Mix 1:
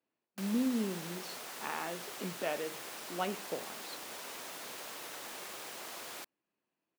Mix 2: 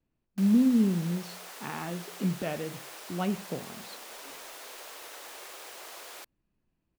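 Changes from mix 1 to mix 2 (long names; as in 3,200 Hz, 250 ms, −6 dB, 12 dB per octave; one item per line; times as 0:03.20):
background: add high-pass filter 420 Hz 24 dB per octave
master: remove high-pass filter 410 Hz 12 dB per octave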